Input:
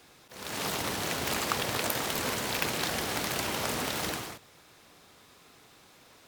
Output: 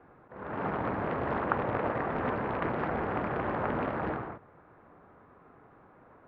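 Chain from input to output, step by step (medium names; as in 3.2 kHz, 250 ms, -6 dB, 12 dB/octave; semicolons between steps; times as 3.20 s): inverse Chebyshev low-pass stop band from 7.9 kHz, stop band 80 dB; loudspeaker Doppler distortion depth 0.67 ms; trim +3.5 dB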